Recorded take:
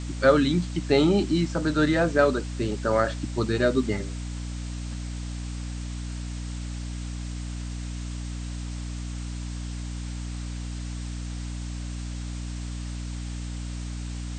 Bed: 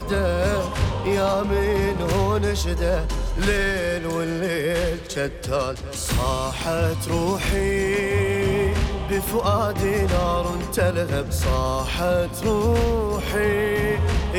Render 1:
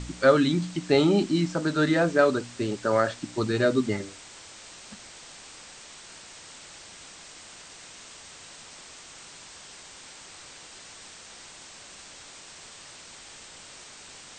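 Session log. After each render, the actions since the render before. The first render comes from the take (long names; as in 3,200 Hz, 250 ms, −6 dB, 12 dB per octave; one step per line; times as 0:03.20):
hum removal 60 Hz, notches 5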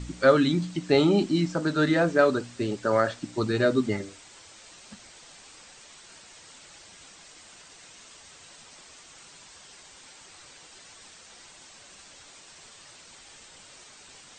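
broadband denoise 6 dB, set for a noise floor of −47 dBFS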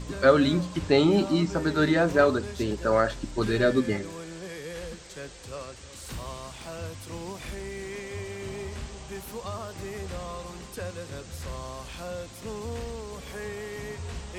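mix in bed −15.5 dB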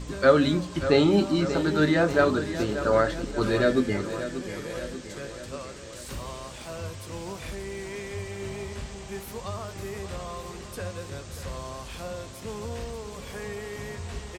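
double-tracking delay 20 ms −12 dB
repeating echo 586 ms, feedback 58%, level −11.5 dB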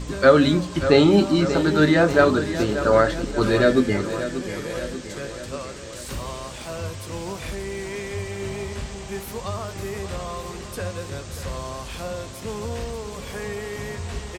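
level +5 dB
brickwall limiter −2 dBFS, peak gain reduction 1.5 dB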